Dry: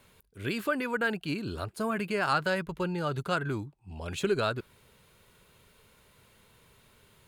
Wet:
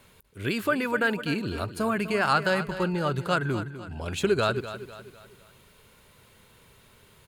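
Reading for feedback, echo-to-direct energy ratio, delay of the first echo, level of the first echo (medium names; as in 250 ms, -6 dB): 43%, -11.5 dB, 250 ms, -12.5 dB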